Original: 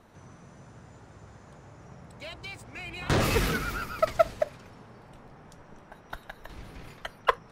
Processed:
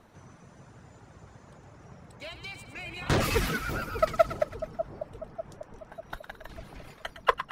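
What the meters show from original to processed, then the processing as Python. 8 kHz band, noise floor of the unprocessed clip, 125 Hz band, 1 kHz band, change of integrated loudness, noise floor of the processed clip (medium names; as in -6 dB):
-1.0 dB, -53 dBFS, -1.0 dB, 0.0 dB, -1.5 dB, -55 dBFS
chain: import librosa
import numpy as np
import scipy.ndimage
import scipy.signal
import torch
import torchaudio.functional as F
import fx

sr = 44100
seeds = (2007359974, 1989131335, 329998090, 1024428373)

y = fx.dereverb_blind(x, sr, rt60_s=0.68)
y = fx.echo_split(y, sr, split_hz=920.0, low_ms=595, high_ms=109, feedback_pct=52, wet_db=-10.0)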